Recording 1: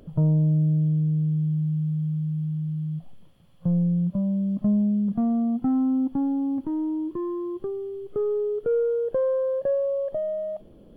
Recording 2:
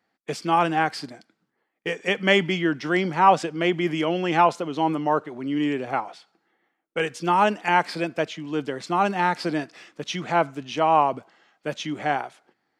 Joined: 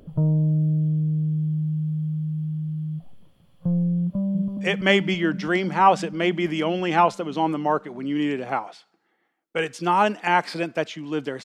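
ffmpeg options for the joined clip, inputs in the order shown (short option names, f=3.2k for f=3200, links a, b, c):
-filter_complex "[0:a]apad=whole_dur=11.44,atrim=end=11.44,atrim=end=4.612[a];[1:a]atrim=start=2.018:end=8.85[b];[a][b]acrossfade=d=0.004:c1=hsin:c2=hsin,asplit=2[c][d];[d]afade=t=in:st=4.01:d=0.01,afade=t=out:st=4.61:d=0.01,aecho=0:1:330|660|990|1320|1650|1980|2310|2640|2970|3300|3630|3960:0.530884|0.424708|0.339766|0.271813|0.21745|0.17396|0.139168|0.111335|0.0890676|0.0712541|0.0570033|0.0456026[e];[c][e]amix=inputs=2:normalize=0"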